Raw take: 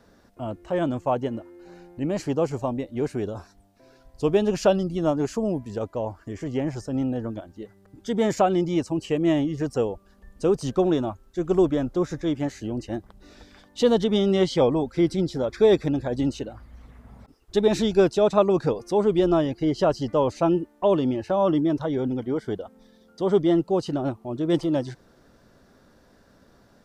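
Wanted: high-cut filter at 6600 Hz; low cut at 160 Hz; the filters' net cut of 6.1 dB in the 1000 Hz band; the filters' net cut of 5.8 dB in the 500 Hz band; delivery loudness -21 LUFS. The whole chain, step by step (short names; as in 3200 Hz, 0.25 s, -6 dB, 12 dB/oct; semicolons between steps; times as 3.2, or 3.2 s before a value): HPF 160 Hz; LPF 6600 Hz; bell 500 Hz -6.5 dB; bell 1000 Hz -5.5 dB; gain +7.5 dB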